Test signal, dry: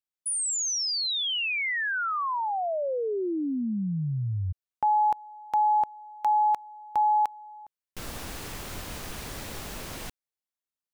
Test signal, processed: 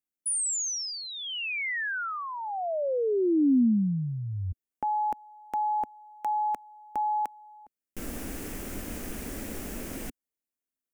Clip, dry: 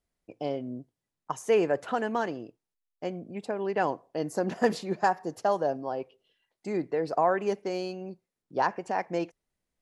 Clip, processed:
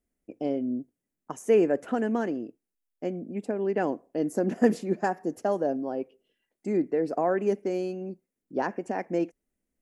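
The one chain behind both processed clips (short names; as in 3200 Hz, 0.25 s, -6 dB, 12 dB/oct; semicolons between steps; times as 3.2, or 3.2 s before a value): ten-band EQ 125 Hz -8 dB, 250 Hz +8 dB, 1000 Hz -9 dB, 4000 Hz -12 dB; gain +2 dB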